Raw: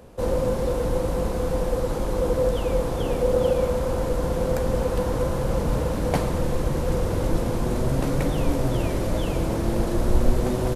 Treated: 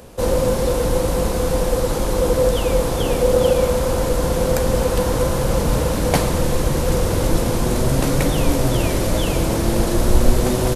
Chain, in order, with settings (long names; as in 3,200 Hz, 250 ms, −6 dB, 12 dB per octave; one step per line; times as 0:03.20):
high-shelf EQ 2,500 Hz +8.5 dB
level +5 dB